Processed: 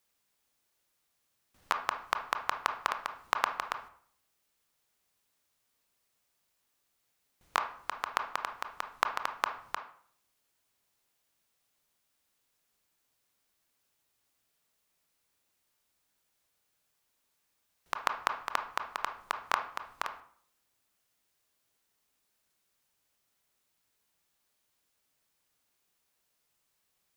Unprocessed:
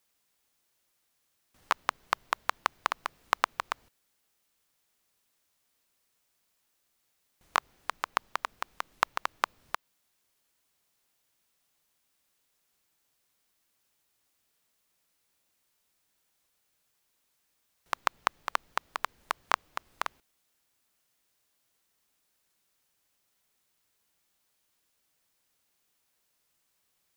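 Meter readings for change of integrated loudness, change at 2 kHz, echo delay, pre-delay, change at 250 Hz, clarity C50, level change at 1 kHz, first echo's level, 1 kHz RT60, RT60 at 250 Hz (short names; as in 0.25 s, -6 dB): -1.5 dB, -1.5 dB, none, 20 ms, -1.5 dB, 10.0 dB, -1.0 dB, none, 0.55 s, 0.65 s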